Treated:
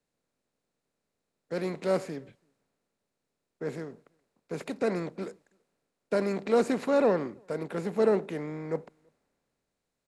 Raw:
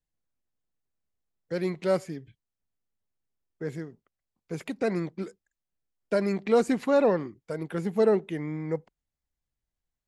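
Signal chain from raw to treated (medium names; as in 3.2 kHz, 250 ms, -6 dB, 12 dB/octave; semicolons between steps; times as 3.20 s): spectral levelling over time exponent 0.6; echo from a far wall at 57 m, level -30 dB; three bands expanded up and down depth 40%; trim -6 dB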